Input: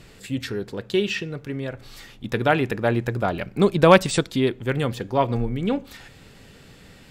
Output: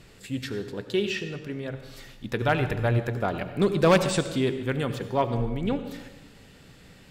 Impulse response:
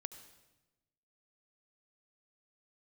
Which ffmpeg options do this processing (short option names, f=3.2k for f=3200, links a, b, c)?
-filter_complex "[0:a]asplit=3[a][b][c];[a]afade=t=out:st=2.41:d=0.02[d];[b]asubboost=boost=7.5:cutoff=98,afade=t=in:st=2.41:d=0.02,afade=t=out:st=2.98:d=0.02[e];[c]afade=t=in:st=2.98:d=0.02[f];[d][e][f]amix=inputs=3:normalize=0,volume=9dB,asoftclip=hard,volume=-9dB[g];[1:a]atrim=start_sample=2205[h];[g][h]afir=irnorm=-1:irlink=0"